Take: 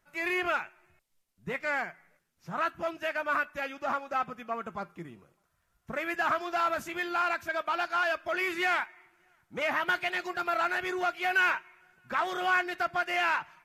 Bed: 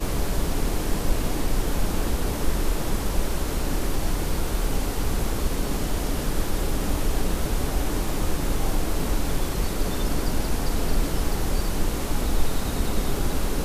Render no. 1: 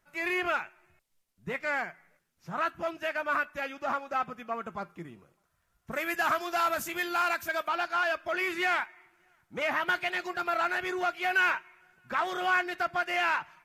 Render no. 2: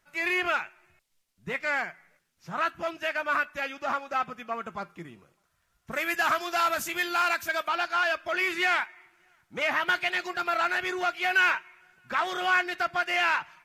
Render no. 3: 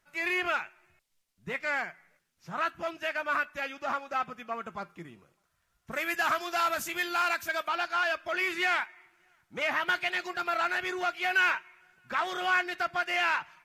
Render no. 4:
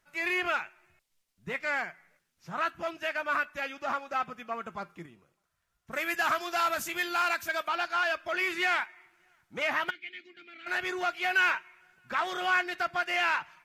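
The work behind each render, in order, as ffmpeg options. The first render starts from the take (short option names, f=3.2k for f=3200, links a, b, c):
-filter_complex "[0:a]asettb=1/sr,asplit=3[a][b][c];[a]atrim=end=5.914[d];[b]atrim=start=5.91:end=7.68,asetpts=PTS-STARTPTS,afade=t=in:d=0.004:c=qsin,afade=t=out:st=1.766:d=0.004:c=qsin,aemphasis=mode=production:type=50kf[e];[c]atrim=start=7.676[f];[d][e]acrossfade=d=0.004:c1=hsin:c2=qsin[g];[g][f]acrossfade=d=0.004:c1=qsin:c2=hsin"
-af "lowpass=f=3.5k:p=1,highshelf=f=2.4k:g=12"
-af "volume=-2.5dB"
-filter_complex "[0:a]asplit=3[a][b][c];[a]afade=t=out:st=9.89:d=0.02[d];[b]asplit=3[e][f][g];[e]bandpass=f=270:t=q:w=8,volume=0dB[h];[f]bandpass=f=2.29k:t=q:w=8,volume=-6dB[i];[g]bandpass=f=3.01k:t=q:w=8,volume=-9dB[j];[h][i][j]amix=inputs=3:normalize=0,afade=t=in:st=9.89:d=0.02,afade=t=out:st=10.66:d=0.02[k];[c]afade=t=in:st=10.66:d=0.02[l];[d][k][l]amix=inputs=3:normalize=0,asplit=3[m][n][o];[m]atrim=end=5.062[p];[n]atrim=start=5.058:end=5.932,asetpts=PTS-STARTPTS,volume=-4.5dB[q];[o]atrim=start=5.928[r];[p][q]acrossfade=d=0.004:c1=hsin:c2=hsin[s];[s][r]acrossfade=d=0.004:c1=hsin:c2=hsin"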